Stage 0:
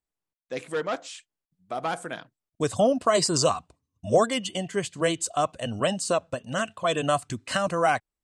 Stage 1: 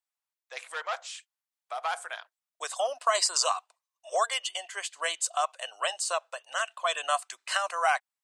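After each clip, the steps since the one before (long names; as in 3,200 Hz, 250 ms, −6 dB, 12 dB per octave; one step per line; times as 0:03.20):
inverse Chebyshev high-pass filter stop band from 220 Hz, stop band 60 dB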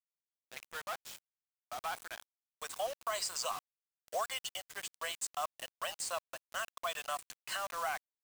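brickwall limiter −18 dBFS, peak gain reduction 6 dB
bit-depth reduction 6 bits, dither none
level −8 dB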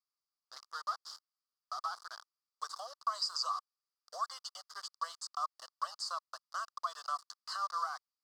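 downward compressor 2 to 1, threshold −40 dBFS, peak gain reduction 5.5 dB
pair of resonant band-passes 2,400 Hz, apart 2 octaves
level +11.5 dB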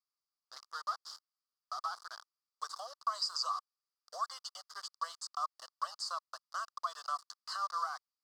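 no processing that can be heard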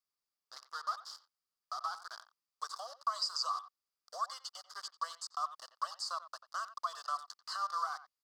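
far-end echo of a speakerphone 90 ms, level −14 dB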